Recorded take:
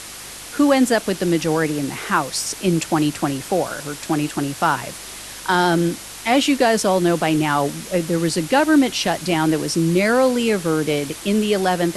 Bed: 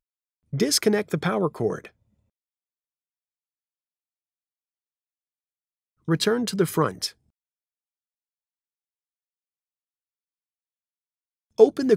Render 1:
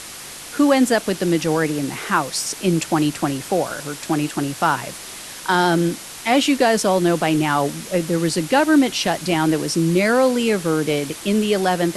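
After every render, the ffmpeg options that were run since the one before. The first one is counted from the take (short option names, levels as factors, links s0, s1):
-af "bandreject=f=50:t=h:w=4,bandreject=f=100:t=h:w=4"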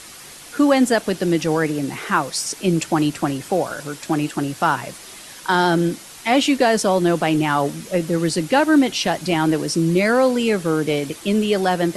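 -af "afftdn=nr=6:nf=-36"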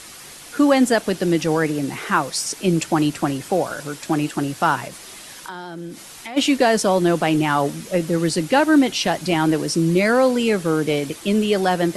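-filter_complex "[0:a]asplit=3[s0][s1][s2];[s0]afade=t=out:st=4.87:d=0.02[s3];[s1]acompressor=threshold=0.0316:ratio=6:attack=3.2:release=140:knee=1:detection=peak,afade=t=in:st=4.87:d=0.02,afade=t=out:st=6.36:d=0.02[s4];[s2]afade=t=in:st=6.36:d=0.02[s5];[s3][s4][s5]amix=inputs=3:normalize=0"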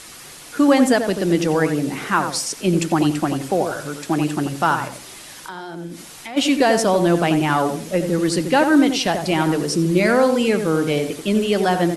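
-filter_complex "[0:a]asplit=2[s0][s1];[s1]adelay=87,lowpass=f=1400:p=1,volume=0.501,asplit=2[s2][s3];[s3]adelay=87,lowpass=f=1400:p=1,volume=0.28,asplit=2[s4][s5];[s5]adelay=87,lowpass=f=1400:p=1,volume=0.28,asplit=2[s6][s7];[s7]adelay=87,lowpass=f=1400:p=1,volume=0.28[s8];[s0][s2][s4][s6][s8]amix=inputs=5:normalize=0"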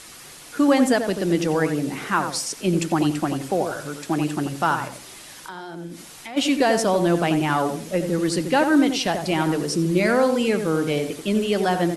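-af "volume=0.708"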